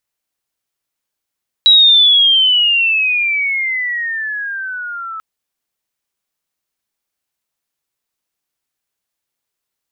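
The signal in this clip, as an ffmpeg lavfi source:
-f lavfi -i "aevalsrc='pow(10,(-4-19.5*t/3.54)/20)*sin(2*PI*3900*3.54/log(1300/3900)*(exp(log(1300/3900)*t/3.54)-1))':d=3.54:s=44100"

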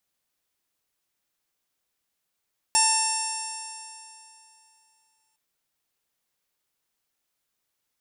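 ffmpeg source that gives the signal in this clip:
-f lavfi -i "aevalsrc='0.075*pow(10,-3*t/2.81)*sin(2*PI*884.8*t)+0.0178*pow(10,-3*t/2.81)*sin(2*PI*1774.35*t)+0.0335*pow(10,-3*t/2.81)*sin(2*PI*2673.39*t)+0.00891*pow(10,-3*t/2.81)*sin(2*PI*3586.56*t)+0.0133*pow(10,-3*t/2.81)*sin(2*PI*4518.36*t)+0.0668*pow(10,-3*t/2.81)*sin(2*PI*5473.15*t)+0.0188*pow(10,-3*t/2.81)*sin(2*PI*6455.13*t)+0.0794*pow(10,-3*t/2.81)*sin(2*PI*7468.25*t)+0.02*pow(10,-3*t/2.81)*sin(2*PI*8516.27*t)+0.0841*pow(10,-3*t/2.81)*sin(2*PI*9602.7*t)':d=2.61:s=44100"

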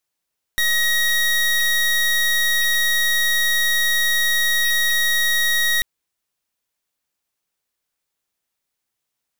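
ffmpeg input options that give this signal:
-f lavfi -i "aevalsrc='0.126*(2*lt(mod(1890*t,1),0.27)-1)':d=5.24:s=44100"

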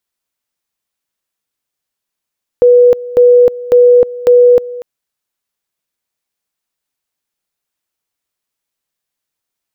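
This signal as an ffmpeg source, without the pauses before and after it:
-f lavfi -i "aevalsrc='pow(10,(-2.5-18.5*gte(mod(t,0.55),0.31))/20)*sin(2*PI*489*t)':d=2.2:s=44100"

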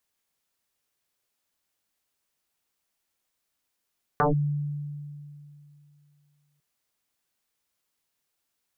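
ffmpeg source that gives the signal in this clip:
-f lavfi -i "aevalsrc='0.133*pow(10,-3*t/2.73)*sin(2*PI*146*t+9.8*clip(1-t/0.14,0,1)*sin(2*PI*1.01*146*t))':d=2.4:s=44100"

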